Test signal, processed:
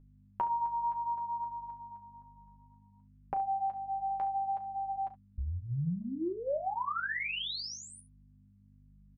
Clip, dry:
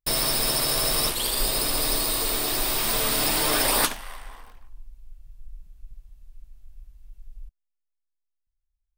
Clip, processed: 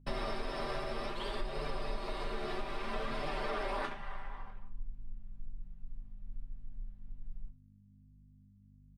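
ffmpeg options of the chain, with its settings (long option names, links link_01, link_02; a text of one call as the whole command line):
ffmpeg -i in.wav -filter_complex "[0:a]lowpass=1900,bandreject=frequency=50:width_type=h:width=6,bandreject=frequency=100:width_type=h:width=6,bandreject=frequency=150:width_type=h:width=6,bandreject=frequency=200:width_type=h:width=6,bandreject=frequency=250:width_type=h:width=6,aecho=1:1:5.1:0.77,acompressor=threshold=-30dB:ratio=6,aeval=exprs='val(0)+0.00224*(sin(2*PI*50*n/s)+sin(2*PI*2*50*n/s)/2+sin(2*PI*3*50*n/s)/3+sin(2*PI*4*50*n/s)/4+sin(2*PI*5*50*n/s)/5)':channel_layout=same,flanger=delay=6.6:depth=7.7:regen=-23:speed=0.61:shape=triangular,asplit=2[link_01][link_02];[link_02]aecho=0:1:35|69:0.237|0.178[link_03];[link_01][link_03]amix=inputs=2:normalize=0" out.wav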